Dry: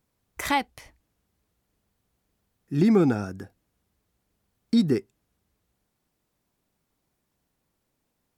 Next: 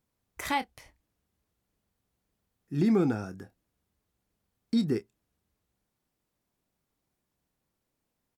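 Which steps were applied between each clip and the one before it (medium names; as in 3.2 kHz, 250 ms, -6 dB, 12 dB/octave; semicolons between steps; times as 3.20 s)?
doubling 27 ms -12.5 dB; trim -5.5 dB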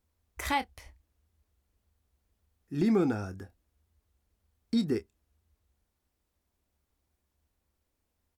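resonant low shelf 100 Hz +7 dB, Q 3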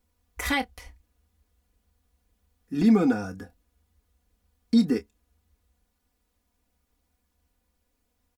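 comb 4.1 ms, depth 83%; trim +3 dB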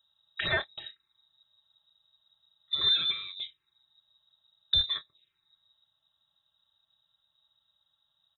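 frequency inversion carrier 3.8 kHz; touch-sensitive phaser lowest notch 390 Hz, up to 3 kHz, full sweep at -27.5 dBFS; trim +4 dB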